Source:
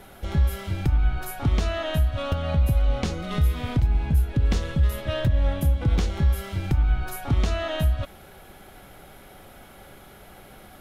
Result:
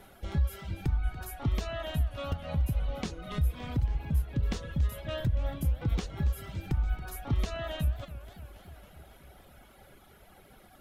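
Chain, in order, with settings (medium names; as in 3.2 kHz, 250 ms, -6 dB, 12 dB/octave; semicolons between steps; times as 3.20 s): reverb removal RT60 1.5 s; modulated delay 280 ms, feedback 69%, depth 191 cents, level -15.5 dB; trim -6.5 dB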